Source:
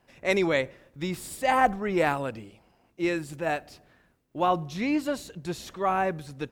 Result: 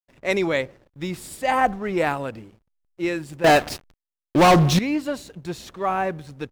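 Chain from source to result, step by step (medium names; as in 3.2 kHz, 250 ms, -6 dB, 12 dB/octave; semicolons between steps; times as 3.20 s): 3.44–4.79 s: waveshaping leveller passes 5; hysteresis with a dead band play -47.5 dBFS; trim +2 dB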